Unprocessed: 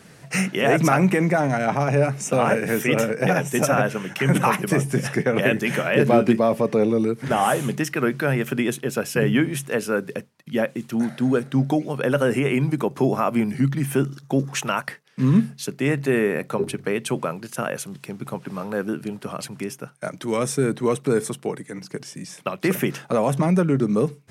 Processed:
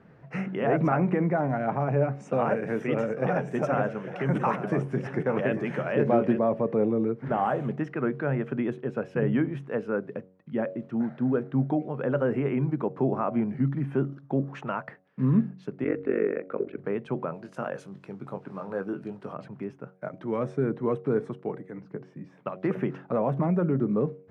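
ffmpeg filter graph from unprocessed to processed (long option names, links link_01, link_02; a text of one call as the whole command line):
ffmpeg -i in.wav -filter_complex "[0:a]asettb=1/sr,asplit=3[link_01][link_02][link_03];[link_01]atrim=end=2.154[link_04];[link_02]atrim=start=2.15:end=6.39,asetpts=PTS-STARTPTS,afade=type=in:duration=0.004:curve=qsin,afade=type=out:start_time=4.236:duration=0.004:curve=qsin,bass=frequency=250:gain=-2,treble=frequency=4000:gain=9,aecho=1:1:849:0.251,atrim=end_sample=186984[link_05];[link_03]atrim=start=6.386[link_06];[link_04][link_05]acrossfade=duration=0.004:curve1=hsin:curve2=qsin[link_07];[link_07][link_06]acrossfade=duration=0.004:curve1=qsin:curve2=hsin,asettb=1/sr,asplit=3[link_08][link_09][link_10];[link_08]atrim=end=15.844[link_11];[link_09]atrim=start=15.84:end=16.78,asetpts=PTS-STARTPTS,afade=type=in:duration=0.004:curve=qsin,afade=type=out:start_time=0.936:duration=0.004:curve=qsin,highpass=230,equalizer=frequency=290:width_type=q:width=4:gain=6,equalizer=frequency=460:width_type=q:width=4:gain=8,equalizer=frequency=890:width_type=q:width=4:gain=-8,equalizer=frequency=1400:width_type=q:width=4:gain=6,equalizer=frequency=2200:width_type=q:width=4:gain=7,lowpass=frequency=3800:width=0.5412,lowpass=frequency=3800:width=1.3066,tremolo=f=47:d=0.947[link_12];[link_10]atrim=start=16.776[link_13];[link_11][link_12]acrossfade=duration=0.004:curve1=hsin:curve2=qsin[link_14];[link_14][link_13]acrossfade=duration=0.004:curve1=qsin:curve2=hsin,asettb=1/sr,asplit=3[link_15][link_16][link_17];[link_15]atrim=end=17.344[link_18];[link_16]atrim=start=17.34:end=19.34,asetpts=PTS-STARTPTS,afade=type=in:duration=0.004:curve=qsin,afade=type=out:start_time=1.996:duration=0.004:curve=qsin,bass=frequency=250:gain=-4,treble=frequency=4000:gain=13,asplit=2[link_19][link_20];[link_20]adelay=21,volume=-9dB[link_21];[link_19][link_21]amix=inputs=2:normalize=0,atrim=end_sample=88200[link_22];[link_17]atrim=start=19.336[link_23];[link_18][link_22]acrossfade=duration=0.004:curve1=hsin:curve2=qsin[link_24];[link_24][link_23]acrossfade=duration=0.004:curve1=qsin:curve2=hsin,asettb=1/sr,asplit=3[link_25][link_26][link_27];[link_25]atrim=end=21.814[link_28];[link_26]atrim=start=21.81:end=22.43,asetpts=PTS-STARTPTS,afade=type=in:duration=0.004:curve=qsin,afade=type=out:start_time=0.616:duration=0.004:curve=qsin,highshelf=frequency=2800:gain=-6.5,asplit=2[link_29][link_30];[link_30]adelay=14,volume=-12dB[link_31];[link_29][link_31]amix=inputs=2:normalize=0,atrim=end_sample=27342[link_32];[link_27]atrim=start=22.426[link_33];[link_28][link_32]acrossfade=duration=0.004:curve1=hsin:curve2=qsin[link_34];[link_34][link_33]acrossfade=duration=0.004:curve1=qsin:curve2=hsin,lowpass=1300,bandreject=frequency=93.16:width_type=h:width=4,bandreject=frequency=186.32:width_type=h:width=4,bandreject=frequency=279.48:width_type=h:width=4,bandreject=frequency=372.64:width_type=h:width=4,bandreject=frequency=465.8:width_type=h:width=4,bandreject=frequency=558.96:width_type=h:width=4,bandreject=frequency=652.12:width_type=h:width=4,bandreject=frequency=745.28:width_type=h:width=4,volume=-5dB" out.wav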